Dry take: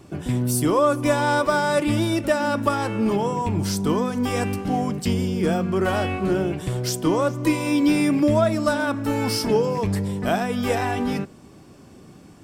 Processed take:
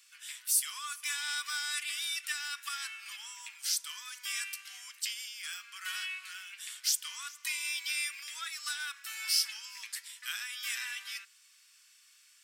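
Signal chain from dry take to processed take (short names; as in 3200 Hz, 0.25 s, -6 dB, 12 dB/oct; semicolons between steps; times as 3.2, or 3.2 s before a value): Bessel high-pass 2700 Hz, order 8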